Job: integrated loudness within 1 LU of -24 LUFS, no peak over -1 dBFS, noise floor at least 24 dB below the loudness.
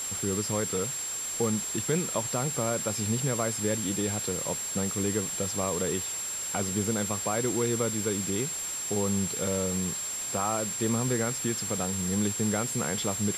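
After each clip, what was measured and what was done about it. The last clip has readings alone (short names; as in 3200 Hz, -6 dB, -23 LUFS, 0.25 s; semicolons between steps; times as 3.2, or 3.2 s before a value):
steady tone 7500 Hz; tone level -32 dBFS; noise floor -34 dBFS; noise floor target -53 dBFS; loudness -28.5 LUFS; peak -14.0 dBFS; loudness target -24.0 LUFS
-> notch 7500 Hz, Q 30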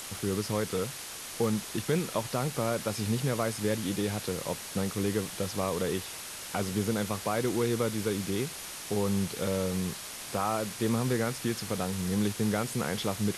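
steady tone none; noise floor -41 dBFS; noise floor target -55 dBFS
-> denoiser 14 dB, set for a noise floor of -41 dBFS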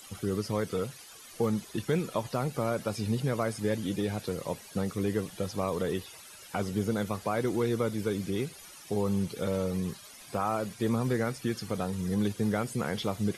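noise floor -50 dBFS; noise floor target -56 dBFS
-> denoiser 6 dB, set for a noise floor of -50 dBFS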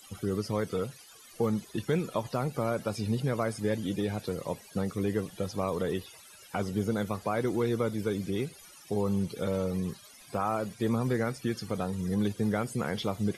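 noise floor -53 dBFS; noise floor target -56 dBFS
-> denoiser 6 dB, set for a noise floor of -53 dBFS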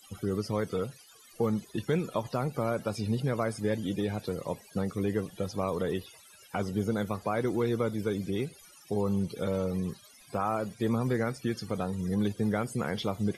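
noise floor -56 dBFS; loudness -32.0 LUFS; peak -16.0 dBFS; loudness target -24.0 LUFS
-> gain +8 dB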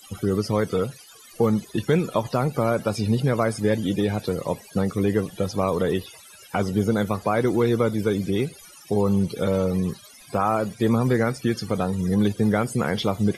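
loudness -24.0 LUFS; peak -8.0 dBFS; noise floor -48 dBFS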